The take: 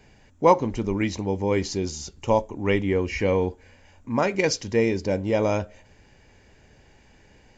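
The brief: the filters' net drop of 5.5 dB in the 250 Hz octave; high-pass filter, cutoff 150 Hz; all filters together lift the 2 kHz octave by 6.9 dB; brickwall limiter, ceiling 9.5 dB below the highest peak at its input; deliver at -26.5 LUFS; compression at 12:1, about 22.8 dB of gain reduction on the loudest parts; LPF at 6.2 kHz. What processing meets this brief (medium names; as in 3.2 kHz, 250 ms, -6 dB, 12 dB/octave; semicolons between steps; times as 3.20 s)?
high-pass 150 Hz; low-pass 6.2 kHz; peaking EQ 250 Hz -7 dB; peaking EQ 2 kHz +8 dB; compression 12:1, threshold -35 dBFS; trim +17 dB; peak limiter -14 dBFS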